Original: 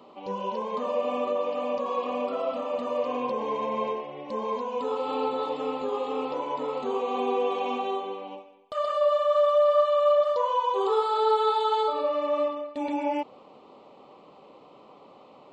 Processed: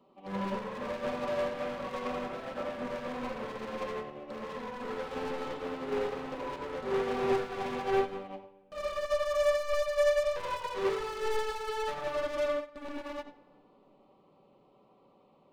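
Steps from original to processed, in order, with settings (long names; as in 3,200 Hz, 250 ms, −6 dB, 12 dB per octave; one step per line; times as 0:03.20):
phase distortion by the signal itself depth 0.19 ms
low-shelf EQ 250 Hz +11.5 dB
in parallel at −1 dB: brickwall limiter −20 dBFS, peak gain reduction 9 dB
on the sum: hard clipping −27 dBFS, distortion −5 dB
on a send: feedback echo with a low-pass in the loop 87 ms, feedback 37%, low-pass 3,700 Hz, level −5 dB
on the sum: rectangular room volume 3,800 cubic metres, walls mixed, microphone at 1.1 metres
expander for the loud parts 2.5 to 1, over −34 dBFS
level −2 dB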